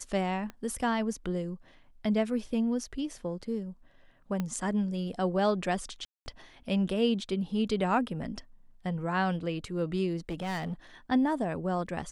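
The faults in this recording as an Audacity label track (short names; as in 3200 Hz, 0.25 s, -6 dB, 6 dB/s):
0.500000	0.500000	pop -27 dBFS
4.400000	4.400000	pop -19 dBFS
6.050000	6.260000	gap 0.21 s
10.290000	10.740000	clipped -30 dBFS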